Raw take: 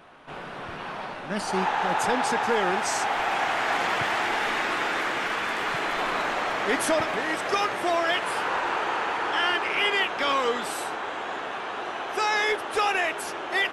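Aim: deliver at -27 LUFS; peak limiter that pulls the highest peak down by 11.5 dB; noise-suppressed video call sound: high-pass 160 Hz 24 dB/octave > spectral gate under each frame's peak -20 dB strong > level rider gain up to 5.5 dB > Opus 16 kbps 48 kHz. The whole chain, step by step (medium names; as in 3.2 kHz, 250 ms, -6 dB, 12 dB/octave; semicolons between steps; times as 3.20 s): peak limiter -23.5 dBFS; high-pass 160 Hz 24 dB/octave; spectral gate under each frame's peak -20 dB strong; level rider gain up to 5.5 dB; trim +5 dB; Opus 16 kbps 48 kHz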